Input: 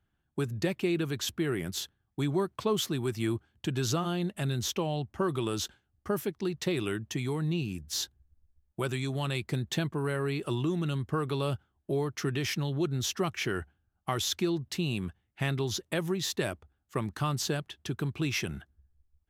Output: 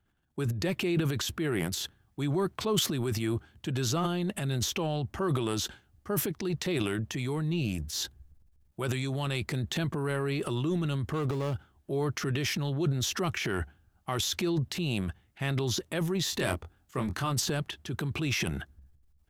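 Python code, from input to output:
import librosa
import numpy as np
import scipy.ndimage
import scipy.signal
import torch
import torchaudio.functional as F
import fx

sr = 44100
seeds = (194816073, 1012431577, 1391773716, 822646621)

y = fx.median_filter(x, sr, points=25, at=(11.13, 11.54))
y = fx.transient(y, sr, attack_db=-3, sustain_db=11)
y = fx.doubler(y, sr, ms=23.0, db=-5.5, at=(16.31, 17.3), fade=0.02)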